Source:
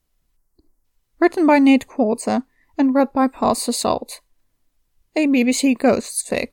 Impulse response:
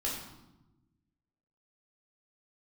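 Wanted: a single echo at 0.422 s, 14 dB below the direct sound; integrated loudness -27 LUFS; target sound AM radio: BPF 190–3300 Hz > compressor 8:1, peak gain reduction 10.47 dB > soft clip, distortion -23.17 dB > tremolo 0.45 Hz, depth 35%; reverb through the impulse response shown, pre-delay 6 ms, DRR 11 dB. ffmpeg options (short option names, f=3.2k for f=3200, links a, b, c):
-filter_complex "[0:a]aecho=1:1:422:0.2,asplit=2[a][b];[1:a]atrim=start_sample=2205,adelay=6[c];[b][c]afir=irnorm=-1:irlink=0,volume=-15dB[d];[a][d]amix=inputs=2:normalize=0,highpass=190,lowpass=3.3k,acompressor=threshold=-18dB:ratio=8,asoftclip=threshold=-11.5dB,tremolo=f=0.45:d=0.35"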